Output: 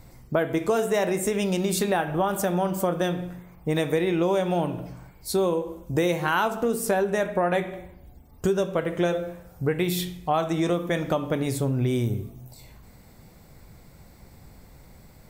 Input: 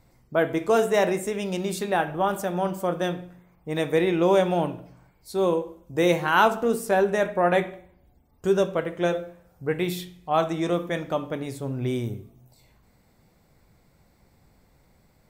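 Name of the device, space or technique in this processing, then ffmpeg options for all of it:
ASMR close-microphone chain: -af "lowshelf=f=160:g=4.5,acompressor=threshold=-29dB:ratio=6,highshelf=f=6.6k:g=5,volume=8dB"

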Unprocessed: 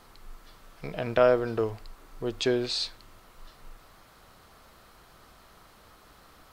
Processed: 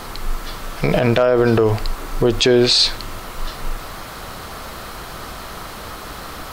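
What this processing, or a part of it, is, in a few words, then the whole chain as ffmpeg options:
loud club master: -af "acompressor=threshold=-29dB:ratio=2.5,asoftclip=type=hard:threshold=-18dB,alimiter=level_in=27dB:limit=-1dB:release=50:level=0:latency=1,volume=-4dB"

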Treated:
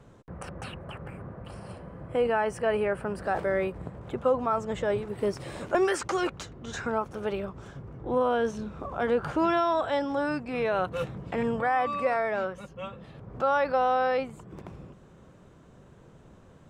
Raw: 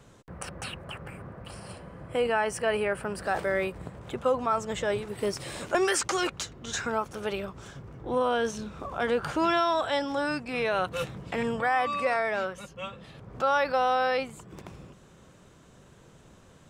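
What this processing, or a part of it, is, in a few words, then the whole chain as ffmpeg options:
through cloth: -af "highshelf=f=2.1k:g=-12,volume=2dB"

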